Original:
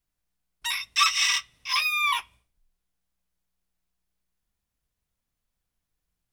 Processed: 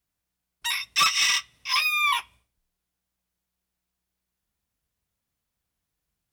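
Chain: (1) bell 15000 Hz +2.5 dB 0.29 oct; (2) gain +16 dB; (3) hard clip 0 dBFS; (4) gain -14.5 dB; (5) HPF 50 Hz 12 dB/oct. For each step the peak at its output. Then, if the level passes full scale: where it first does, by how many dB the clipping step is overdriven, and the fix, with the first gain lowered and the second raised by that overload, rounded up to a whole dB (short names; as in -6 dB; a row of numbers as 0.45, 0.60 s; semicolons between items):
-8.0, +8.0, 0.0, -14.5, -13.5 dBFS; step 2, 8.0 dB; step 2 +8 dB, step 4 -6.5 dB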